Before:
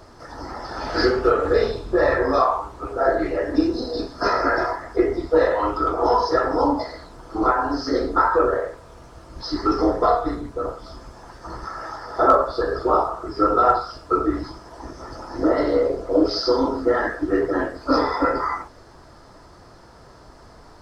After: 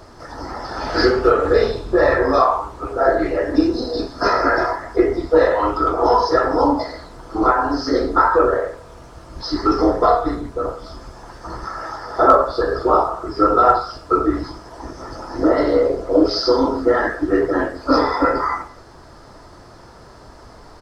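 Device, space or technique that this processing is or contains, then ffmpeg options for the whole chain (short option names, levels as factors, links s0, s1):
ducked delay: -filter_complex "[0:a]asplit=3[s0][s1][s2];[s1]adelay=173,volume=0.447[s3];[s2]apad=whole_len=925615[s4];[s3][s4]sidechaincompress=threshold=0.01:ratio=8:attack=16:release=595[s5];[s0][s5]amix=inputs=2:normalize=0,volume=1.5"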